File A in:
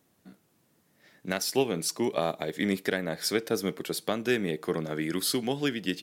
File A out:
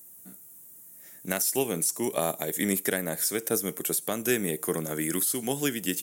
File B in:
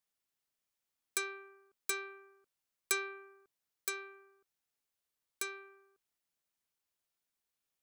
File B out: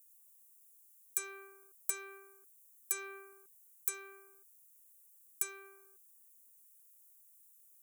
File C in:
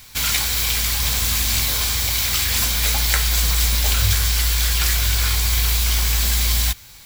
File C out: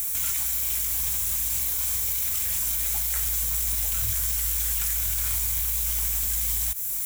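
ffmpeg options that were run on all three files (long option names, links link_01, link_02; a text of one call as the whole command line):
ffmpeg -i in.wav -filter_complex "[0:a]aexciter=amount=13.7:drive=6:freq=6700,alimiter=limit=-5dB:level=0:latency=1:release=253,acrossover=split=5100[link_01][link_02];[link_02]acompressor=threshold=-25dB:ratio=4:attack=1:release=60[link_03];[link_01][link_03]amix=inputs=2:normalize=0" out.wav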